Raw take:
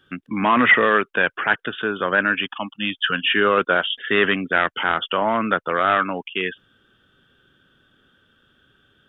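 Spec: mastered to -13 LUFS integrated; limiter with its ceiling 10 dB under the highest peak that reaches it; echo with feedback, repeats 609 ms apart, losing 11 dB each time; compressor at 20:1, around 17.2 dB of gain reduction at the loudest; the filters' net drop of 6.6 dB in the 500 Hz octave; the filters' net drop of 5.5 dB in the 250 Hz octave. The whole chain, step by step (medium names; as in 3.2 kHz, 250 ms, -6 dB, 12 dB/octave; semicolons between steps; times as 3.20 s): peaking EQ 250 Hz -5 dB; peaking EQ 500 Hz -7 dB; compression 20:1, threshold -27 dBFS; peak limiter -24.5 dBFS; feedback delay 609 ms, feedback 28%, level -11 dB; trim +21.5 dB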